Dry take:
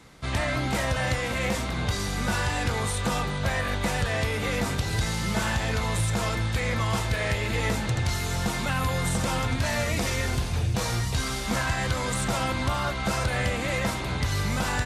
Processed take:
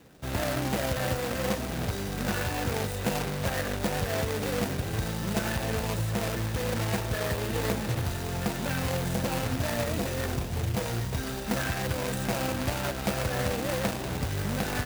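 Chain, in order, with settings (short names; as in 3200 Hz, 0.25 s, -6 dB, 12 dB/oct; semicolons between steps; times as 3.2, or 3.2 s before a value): median filter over 41 samples; tilt +3 dB/oct; gain +6 dB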